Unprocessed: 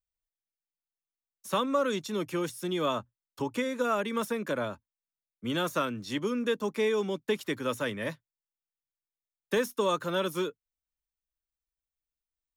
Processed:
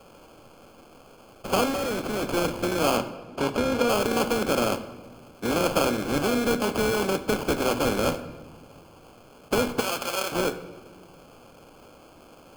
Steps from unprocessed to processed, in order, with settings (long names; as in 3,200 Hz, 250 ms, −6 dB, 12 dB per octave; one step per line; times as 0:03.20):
compressor on every frequency bin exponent 0.4
sample-rate reduction 1,900 Hz, jitter 0%
0:02.97–0:03.89: high-shelf EQ 7,300 Hz −9.5 dB
0:09.80–0:10.32: high-pass filter 1,400 Hz 6 dB per octave
convolution reverb RT60 1.4 s, pre-delay 4 ms, DRR 10 dB
0:01.70–0:02.23: hard clipping −25.5 dBFS, distortion −16 dB